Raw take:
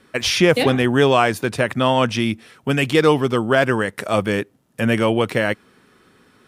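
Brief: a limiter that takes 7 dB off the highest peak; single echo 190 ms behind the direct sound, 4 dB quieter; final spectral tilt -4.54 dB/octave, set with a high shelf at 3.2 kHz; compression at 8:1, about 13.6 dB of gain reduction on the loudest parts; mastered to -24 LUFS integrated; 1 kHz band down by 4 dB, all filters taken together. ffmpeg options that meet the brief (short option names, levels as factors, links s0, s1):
-af "equalizer=f=1000:t=o:g=-4.5,highshelf=f=3200:g=-8,acompressor=threshold=0.0562:ratio=8,alimiter=limit=0.0944:level=0:latency=1,aecho=1:1:190:0.631,volume=2.11"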